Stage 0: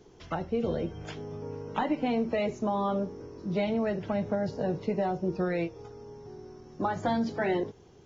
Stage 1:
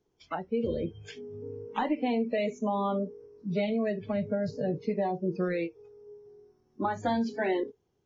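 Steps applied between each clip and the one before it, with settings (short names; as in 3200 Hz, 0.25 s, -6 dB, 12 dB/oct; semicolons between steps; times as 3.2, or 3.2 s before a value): spectral noise reduction 20 dB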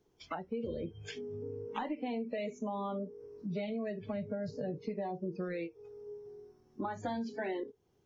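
compressor 2.5:1, threshold -43 dBFS, peak gain reduction 13 dB; gain +3 dB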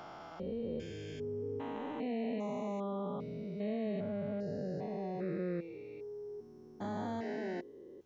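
stepped spectrum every 0.4 s; gain +3.5 dB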